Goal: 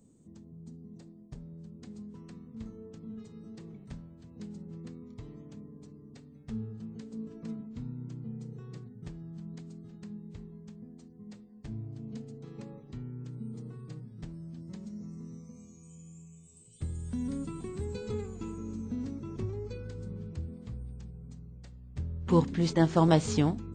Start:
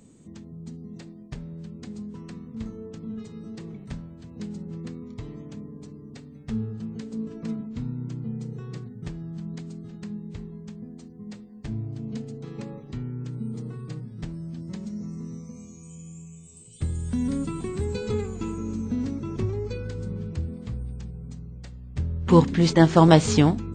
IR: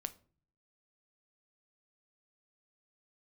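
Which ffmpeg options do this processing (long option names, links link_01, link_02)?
-af "asetnsamples=nb_out_samples=441:pad=0,asendcmd='1.82 equalizer g -2.5',equalizer=frequency=2300:width=0.64:gain=-10,volume=-8dB"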